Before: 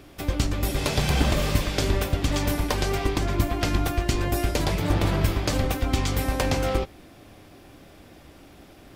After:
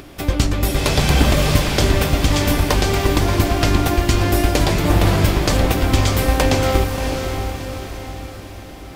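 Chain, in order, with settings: echo that smears into a reverb 630 ms, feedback 48%, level -6 dB; upward compressor, threshold -43 dBFS; trim +7 dB

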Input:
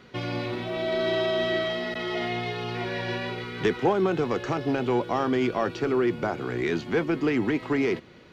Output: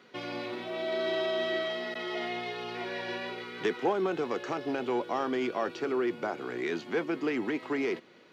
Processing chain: high-pass 260 Hz 12 dB/octave; trim -4.5 dB

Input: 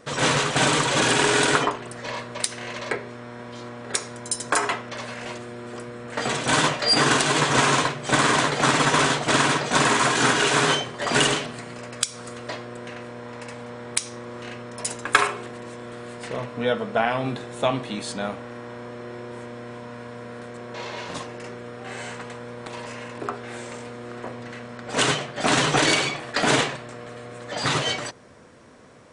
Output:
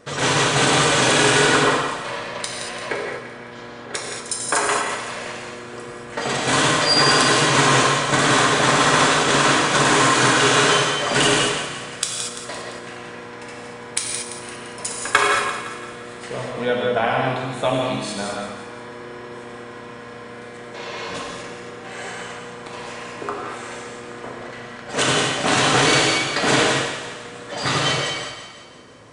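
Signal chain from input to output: 1.41–4.15 s: treble shelf 7.8 kHz -12 dB; two-band feedback delay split 690 Hz, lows 89 ms, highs 171 ms, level -9.5 dB; gated-style reverb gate 260 ms flat, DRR -1 dB

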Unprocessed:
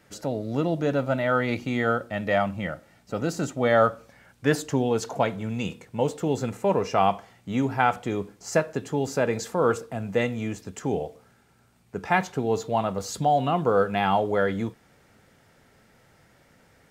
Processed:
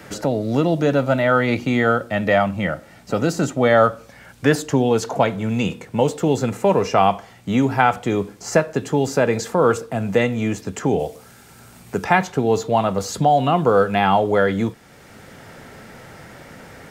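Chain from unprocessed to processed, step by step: 10.99–12.05 s: treble shelf 4.6 kHz +9.5 dB; three bands compressed up and down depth 40%; trim +6.5 dB

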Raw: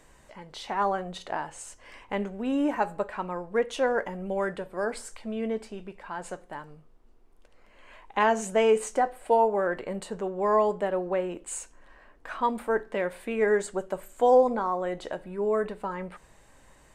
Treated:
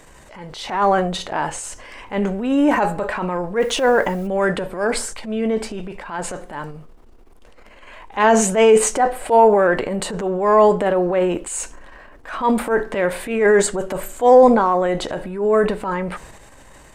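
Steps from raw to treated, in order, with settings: transient shaper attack -9 dB, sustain +6 dB; 3.59–4.26 s: added noise white -63 dBFS; loudness maximiser +12 dB; trim -1 dB

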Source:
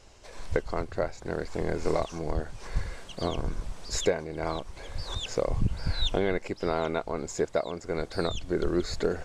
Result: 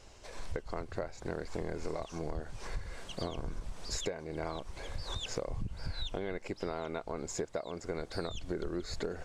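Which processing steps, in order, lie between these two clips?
compression, threshold -32 dBFS, peak gain reduction 12.5 dB; trim -1 dB

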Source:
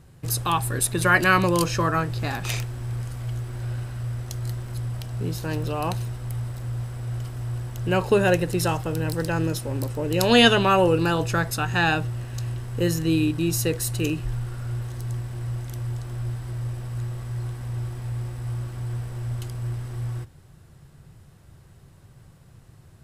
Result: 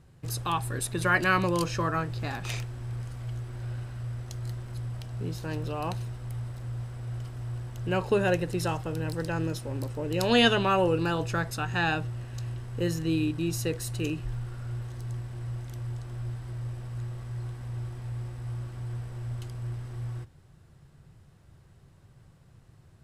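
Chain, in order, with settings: treble shelf 11 kHz -11 dB; trim -5.5 dB

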